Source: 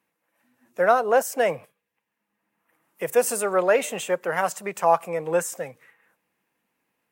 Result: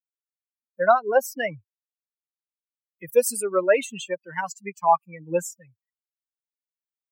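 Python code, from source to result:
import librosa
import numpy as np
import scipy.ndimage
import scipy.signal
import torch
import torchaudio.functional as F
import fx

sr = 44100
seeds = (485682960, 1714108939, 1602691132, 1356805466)

y = fx.bin_expand(x, sr, power=3.0)
y = y * librosa.db_to_amplitude(4.5)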